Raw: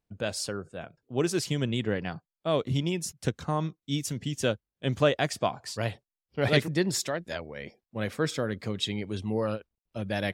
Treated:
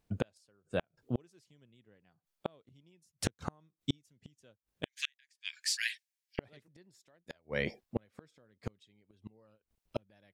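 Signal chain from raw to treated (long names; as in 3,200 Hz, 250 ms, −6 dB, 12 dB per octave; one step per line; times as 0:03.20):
0:04.85–0:06.39: Chebyshev high-pass with heavy ripple 1,600 Hz, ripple 3 dB
gate with flip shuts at −25 dBFS, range −42 dB
level +7 dB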